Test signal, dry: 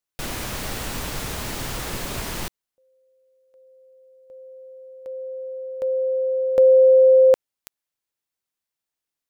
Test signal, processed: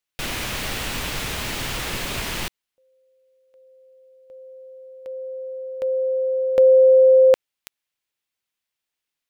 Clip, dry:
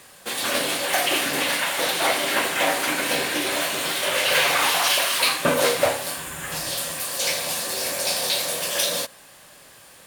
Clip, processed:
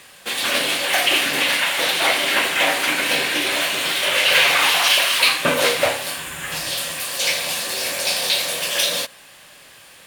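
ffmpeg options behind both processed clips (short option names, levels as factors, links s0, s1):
-af "equalizer=f=2700:t=o:w=1.5:g=7"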